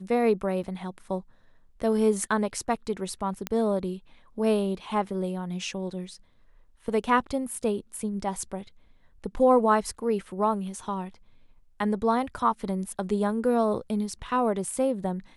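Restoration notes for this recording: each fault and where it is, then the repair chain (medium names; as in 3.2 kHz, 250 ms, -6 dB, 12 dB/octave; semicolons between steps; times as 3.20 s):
0.63–0.64 s: dropout 7 ms
3.47 s: pop -13 dBFS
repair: de-click; interpolate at 0.63 s, 7 ms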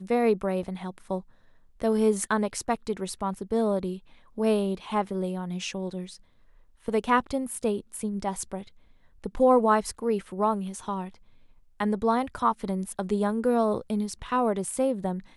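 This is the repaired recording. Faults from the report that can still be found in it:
nothing left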